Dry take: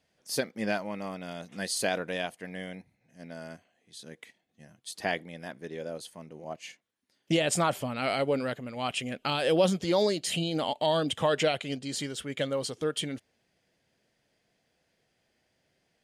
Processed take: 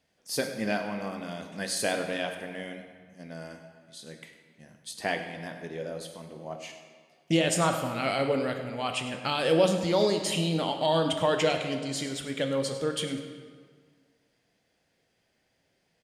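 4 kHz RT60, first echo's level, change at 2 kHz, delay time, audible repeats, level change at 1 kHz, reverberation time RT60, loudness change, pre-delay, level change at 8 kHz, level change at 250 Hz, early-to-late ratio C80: 1.2 s, -15.5 dB, +1.0 dB, 0.102 s, 1, +1.5 dB, 1.7 s, +1.5 dB, 9 ms, +1.0 dB, +2.0 dB, 8.0 dB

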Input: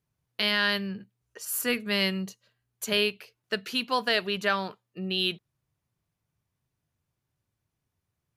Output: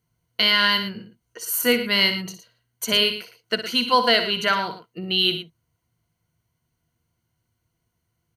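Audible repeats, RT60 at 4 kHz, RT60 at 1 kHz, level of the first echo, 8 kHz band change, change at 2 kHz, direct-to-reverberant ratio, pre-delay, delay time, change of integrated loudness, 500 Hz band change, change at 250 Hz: 2, none, none, -10.5 dB, +5.5 dB, +6.0 dB, none, none, 60 ms, +7.5 dB, +5.5 dB, +4.0 dB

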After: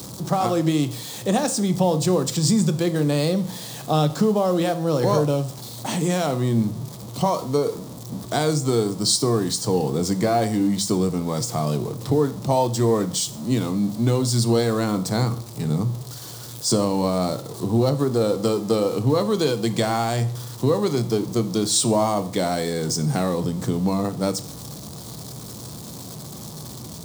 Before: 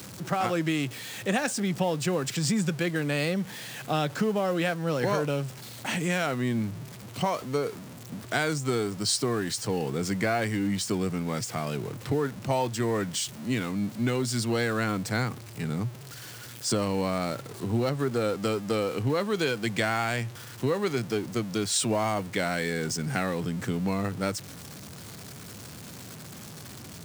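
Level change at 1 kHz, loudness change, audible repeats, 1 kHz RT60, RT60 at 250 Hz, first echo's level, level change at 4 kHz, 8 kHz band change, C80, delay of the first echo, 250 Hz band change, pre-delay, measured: +6.0 dB, +6.5 dB, none, 0.50 s, 0.55 s, none, +5.5 dB, +7.0 dB, 19.0 dB, none, +7.0 dB, 6 ms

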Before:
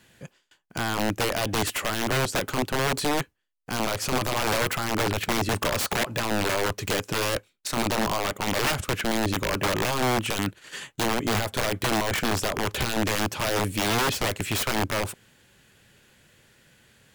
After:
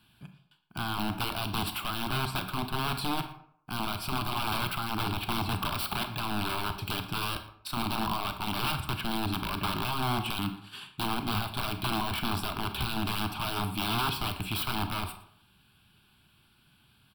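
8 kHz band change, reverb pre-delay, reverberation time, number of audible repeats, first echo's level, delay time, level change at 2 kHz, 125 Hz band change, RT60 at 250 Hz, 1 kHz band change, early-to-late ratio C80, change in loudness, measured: -12.0 dB, 29 ms, 0.65 s, 1, -19.5 dB, 0.115 s, -8.0 dB, -3.5 dB, 0.60 s, -3.5 dB, 12.5 dB, -6.0 dB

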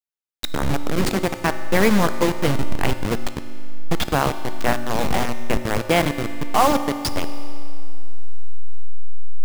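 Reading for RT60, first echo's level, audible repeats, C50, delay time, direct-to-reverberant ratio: 2.4 s, none, none, 10.5 dB, none, 9.5 dB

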